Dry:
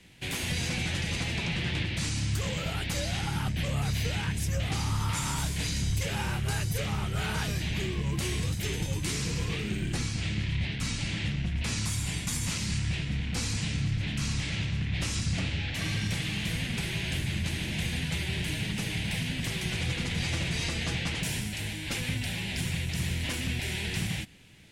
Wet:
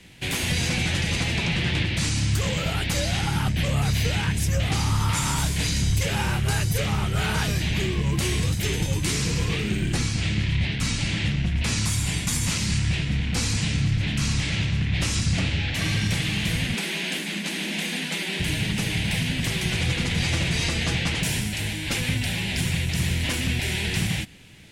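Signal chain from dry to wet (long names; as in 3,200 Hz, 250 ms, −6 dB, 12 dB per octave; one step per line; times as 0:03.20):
0:16.74–0:18.40: linear-phase brick-wall high-pass 170 Hz
level +6.5 dB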